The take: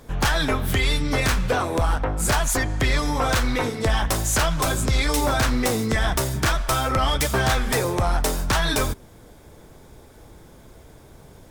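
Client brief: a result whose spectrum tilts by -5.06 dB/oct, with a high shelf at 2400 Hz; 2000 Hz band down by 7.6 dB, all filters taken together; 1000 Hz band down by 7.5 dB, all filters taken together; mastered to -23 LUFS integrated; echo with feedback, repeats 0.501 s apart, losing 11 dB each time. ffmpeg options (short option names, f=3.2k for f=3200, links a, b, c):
-af "equalizer=f=1k:t=o:g=-8,equalizer=f=2k:t=o:g=-4,highshelf=f=2.4k:g=-6,aecho=1:1:501|1002|1503:0.282|0.0789|0.0221,volume=2dB"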